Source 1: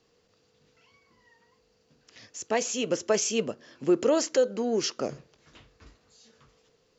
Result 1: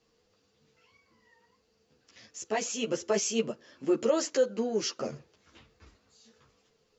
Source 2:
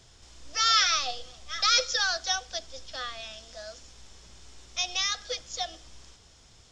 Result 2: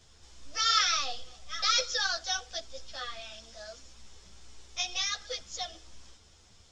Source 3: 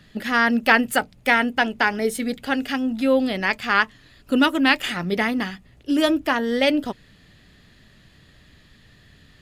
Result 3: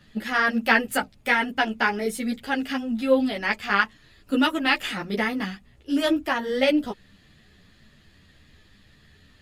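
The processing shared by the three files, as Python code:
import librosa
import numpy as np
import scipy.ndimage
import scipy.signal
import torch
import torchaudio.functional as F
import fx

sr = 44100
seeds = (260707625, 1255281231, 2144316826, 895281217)

y = fx.ensemble(x, sr)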